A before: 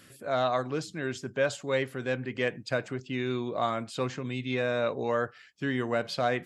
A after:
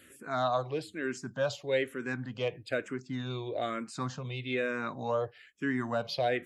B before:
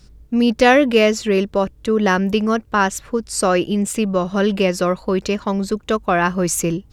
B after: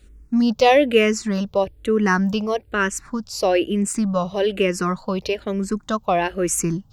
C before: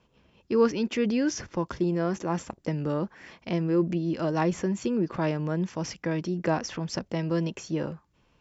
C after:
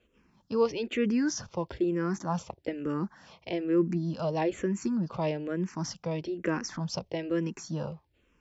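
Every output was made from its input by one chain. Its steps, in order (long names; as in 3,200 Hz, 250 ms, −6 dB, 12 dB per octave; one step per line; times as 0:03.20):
frequency shifter mixed with the dry sound −1.1 Hz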